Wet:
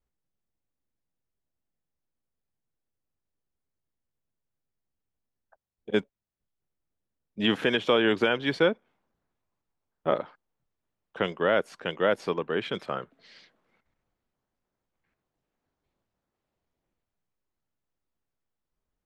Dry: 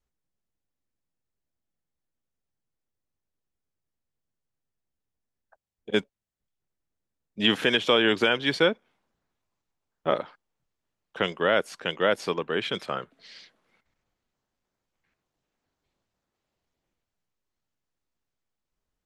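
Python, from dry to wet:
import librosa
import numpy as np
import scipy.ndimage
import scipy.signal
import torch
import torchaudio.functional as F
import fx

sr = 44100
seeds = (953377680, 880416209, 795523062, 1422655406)

y = fx.high_shelf(x, sr, hz=2600.0, db=-9.5)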